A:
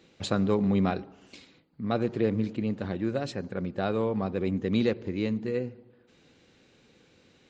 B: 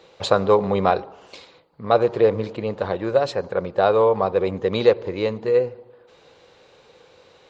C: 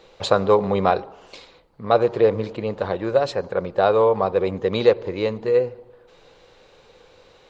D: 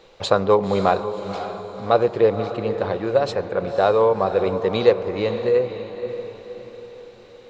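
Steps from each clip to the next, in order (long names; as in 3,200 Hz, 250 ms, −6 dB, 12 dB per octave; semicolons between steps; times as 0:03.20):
octave-band graphic EQ 250/500/1,000/4,000 Hz −10/+11/+11/+5 dB; level +3 dB
background noise brown −62 dBFS
feedback delay with all-pass diffusion 535 ms, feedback 46%, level −10 dB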